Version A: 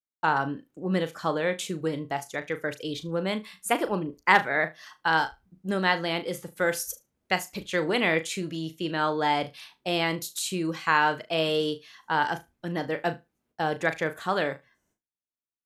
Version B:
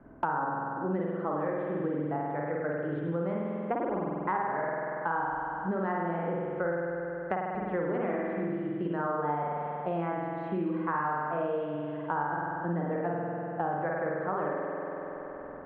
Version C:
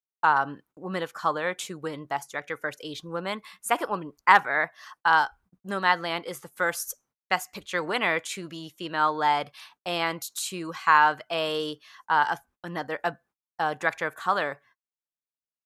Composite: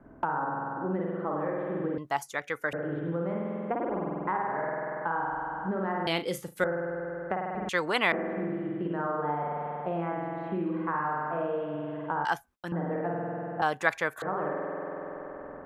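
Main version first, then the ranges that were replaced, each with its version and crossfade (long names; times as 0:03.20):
B
0:01.98–0:02.73: punch in from C
0:06.07–0:06.64: punch in from A
0:07.69–0:08.12: punch in from C
0:12.25–0:12.72: punch in from C
0:13.62–0:14.22: punch in from C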